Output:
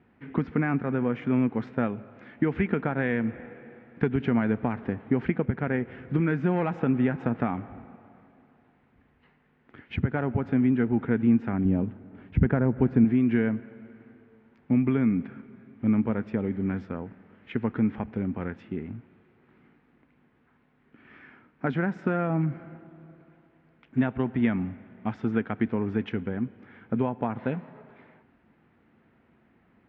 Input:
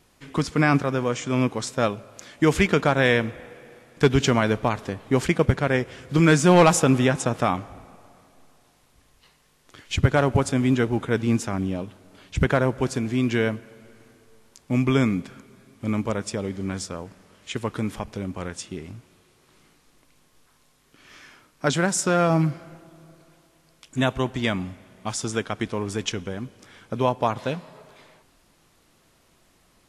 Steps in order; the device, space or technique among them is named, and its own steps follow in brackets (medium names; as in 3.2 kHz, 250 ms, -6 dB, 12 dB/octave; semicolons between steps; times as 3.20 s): bass amplifier (compression 6:1, threshold -22 dBFS, peak gain reduction 11 dB; cabinet simulation 72–2100 Hz, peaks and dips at 230 Hz +8 dB, 590 Hz -6 dB, 1.1 kHz -7 dB); 11.65–13.05 s: tilt EQ -2 dB/octave